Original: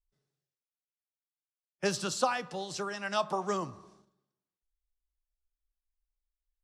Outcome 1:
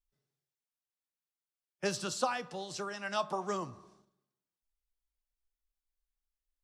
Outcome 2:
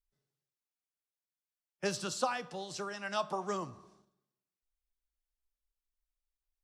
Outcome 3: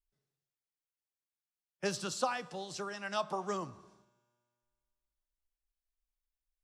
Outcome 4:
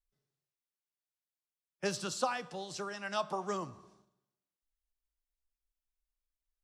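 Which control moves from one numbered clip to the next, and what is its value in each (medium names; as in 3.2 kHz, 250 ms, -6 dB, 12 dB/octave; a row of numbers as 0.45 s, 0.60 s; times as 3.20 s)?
feedback comb, decay: 0.19 s, 0.45 s, 2.2 s, 0.95 s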